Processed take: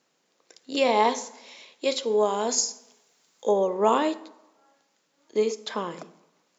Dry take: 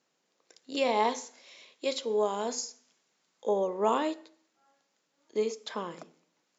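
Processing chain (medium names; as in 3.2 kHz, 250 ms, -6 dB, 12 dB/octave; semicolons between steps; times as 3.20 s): 2.49–3.52 s: treble shelf 4.9 kHz +9 dB; on a send: reverberation RT60 1.1 s, pre-delay 43 ms, DRR 20 dB; on the sum: trim +5.5 dB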